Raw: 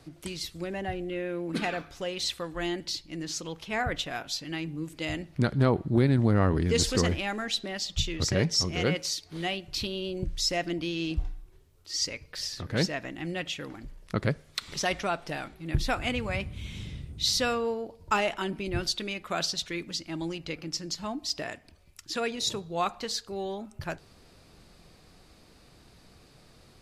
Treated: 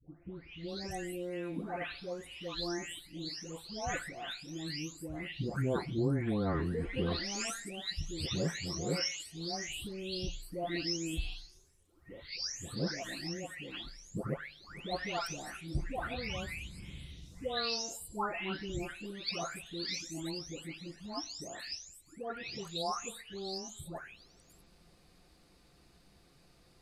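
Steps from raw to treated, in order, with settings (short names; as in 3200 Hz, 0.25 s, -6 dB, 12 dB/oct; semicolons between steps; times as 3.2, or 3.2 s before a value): spectral delay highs late, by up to 0.684 s; gain -6 dB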